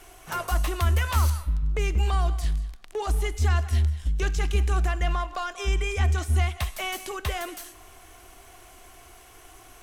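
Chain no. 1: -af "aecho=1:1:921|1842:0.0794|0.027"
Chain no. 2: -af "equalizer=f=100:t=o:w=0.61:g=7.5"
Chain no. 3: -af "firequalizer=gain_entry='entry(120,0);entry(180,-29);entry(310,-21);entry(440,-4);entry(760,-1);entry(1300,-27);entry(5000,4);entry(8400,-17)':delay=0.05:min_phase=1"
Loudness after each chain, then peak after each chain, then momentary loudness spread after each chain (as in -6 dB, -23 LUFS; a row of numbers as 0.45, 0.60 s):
-27.0, -25.0, -27.5 LUFS; -12.0, -9.5, -13.5 dBFS; 9, 11, 13 LU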